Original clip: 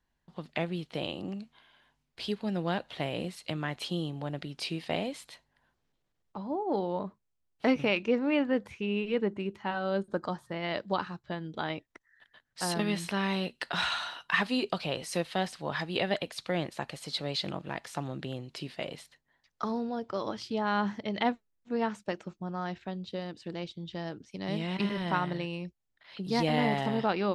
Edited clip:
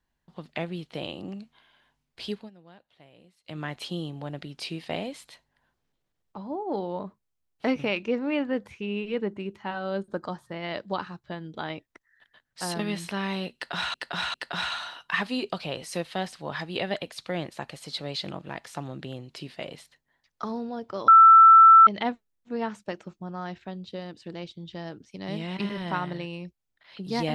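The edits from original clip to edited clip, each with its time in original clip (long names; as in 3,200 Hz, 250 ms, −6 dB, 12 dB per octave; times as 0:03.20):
0:02.35–0:03.59: duck −21.5 dB, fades 0.15 s
0:13.54–0:13.94: repeat, 3 plays
0:20.28–0:21.07: beep over 1,330 Hz −9 dBFS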